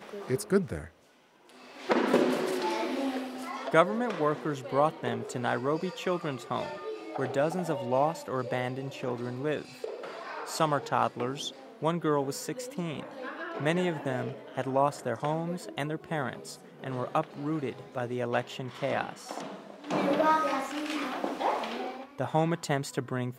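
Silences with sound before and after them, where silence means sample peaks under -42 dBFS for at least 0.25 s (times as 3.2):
0.88–1.49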